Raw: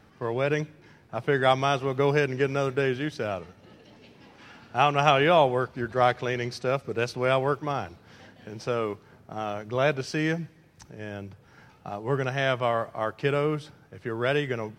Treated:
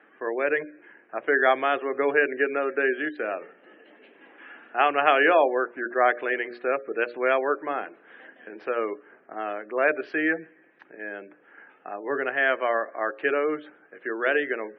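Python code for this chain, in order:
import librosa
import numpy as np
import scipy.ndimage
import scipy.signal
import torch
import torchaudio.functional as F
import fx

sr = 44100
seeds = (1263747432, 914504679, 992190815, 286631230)

y = fx.cabinet(x, sr, low_hz=300.0, low_slope=24, high_hz=2800.0, hz=(310.0, 900.0, 1700.0), db=(3, -5, 8))
y = fx.hum_notches(y, sr, base_hz=60, count=10)
y = fx.spec_gate(y, sr, threshold_db=-30, keep='strong')
y = y * librosa.db_to_amplitude(1.5)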